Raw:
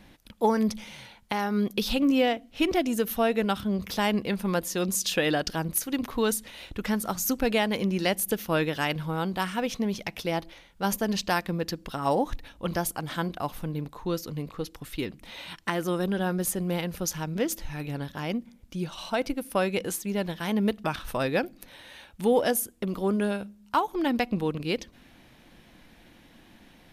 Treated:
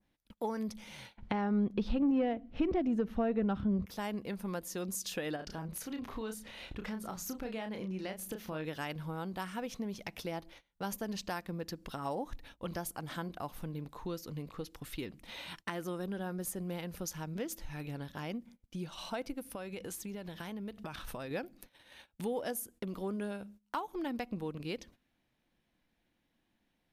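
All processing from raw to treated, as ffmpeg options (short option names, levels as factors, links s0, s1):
-filter_complex "[0:a]asettb=1/sr,asplit=3[s0][s1][s2];[s0]atrim=end=1.174[s3];[s1]atrim=start=1.17:end=3.86,asetpts=PTS-STARTPTS,afade=t=in:d=0.004:c=qsin,afade=t=out:st=2.686:d=0.004:c=qsin,lowshelf=f=370:g=10.5,acontrast=77,lowpass=2700[s4];[s2]atrim=start=3.856[s5];[s3][s4]acrossfade=d=0.004:c1=hsin:c2=qsin[s6];[s6][s5]acrossfade=d=0.004:c1=qsin:c2=hsin,asettb=1/sr,asplit=3[s7][s8][s9];[s7]atrim=end=5.364[s10];[s8]atrim=start=5.36:end=8.65,asetpts=PTS-STARTPTS,afade=t=in:d=0.004:c=qsin,afade=t=out:st=3.286:d=0.004:c=qsin,lowpass=f=3800:p=1,acompressor=threshold=0.0282:ratio=2:attack=3.2:release=140:knee=1:detection=peak,asplit=2[s11][s12];[s12]adelay=32,volume=0.501[s13];[s11][s13]amix=inputs=2:normalize=0,atrim=end_sample=145089[s14];[s9]atrim=start=8.646[s15];[s10][s14]acrossfade=d=0.004:c1=hsin:c2=qsin[s16];[s16][s15]acrossfade=d=0.004:c1=qsin:c2=hsin,asettb=1/sr,asplit=3[s17][s18][s19];[s17]atrim=end=19.454[s20];[s18]atrim=start=19.45:end=21.31,asetpts=PTS-STARTPTS,afade=t=in:d=0.004:c=qsin,afade=t=out:st=1.856:d=0.004:c=qsin,acompressor=threshold=0.0224:ratio=4:attack=3.2:release=140:knee=1:detection=peak,aeval=exprs='val(0)+0.000794*(sin(2*PI*50*n/s)+sin(2*PI*2*50*n/s)/2+sin(2*PI*3*50*n/s)/3+sin(2*PI*4*50*n/s)/4+sin(2*PI*5*50*n/s)/5)':c=same[s21];[s19]atrim=start=21.306[s22];[s20][s21]acrossfade=d=0.004:c1=hsin:c2=qsin[s23];[s23][s22]acrossfade=d=0.004:c1=qsin:c2=hsin,agate=range=0.0891:threshold=0.00501:ratio=16:detection=peak,adynamicequalizer=threshold=0.00562:dfrequency=3200:dqfactor=1:tfrequency=3200:tqfactor=1:attack=5:release=100:ratio=0.375:range=2.5:mode=cutabove:tftype=bell,acompressor=threshold=0.0126:ratio=2,volume=0.708"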